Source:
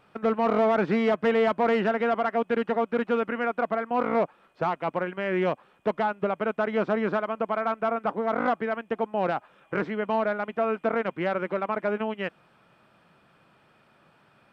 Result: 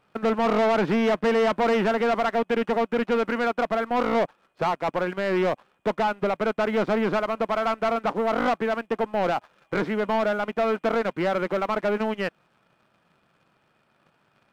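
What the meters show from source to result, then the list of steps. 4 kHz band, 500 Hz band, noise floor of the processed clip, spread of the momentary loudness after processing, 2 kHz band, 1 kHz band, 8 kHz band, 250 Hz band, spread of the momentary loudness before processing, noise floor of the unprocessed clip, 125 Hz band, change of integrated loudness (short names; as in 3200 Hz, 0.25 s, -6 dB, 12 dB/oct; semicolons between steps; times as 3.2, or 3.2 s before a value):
+6.5 dB, +2.0 dB, -67 dBFS, 5 LU, +2.5 dB, +2.0 dB, n/a, +2.5 dB, 7 LU, -62 dBFS, +2.5 dB, +2.0 dB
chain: sample leveller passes 2; gain -2 dB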